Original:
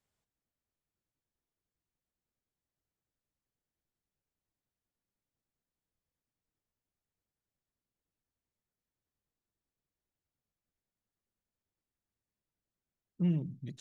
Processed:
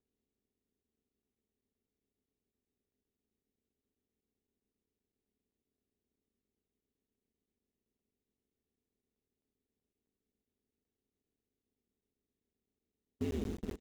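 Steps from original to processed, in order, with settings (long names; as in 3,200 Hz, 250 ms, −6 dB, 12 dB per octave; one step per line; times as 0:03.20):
compressor on every frequency bin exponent 0.2
noise gate −30 dBFS, range −39 dB
comb filter 2.7 ms, depth 68%
ring modulation 79 Hz
in parallel at −7 dB: bit reduction 7 bits
on the sum: regular buffer underruns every 0.13 s, samples 512, zero, from 0:00.83
level −4 dB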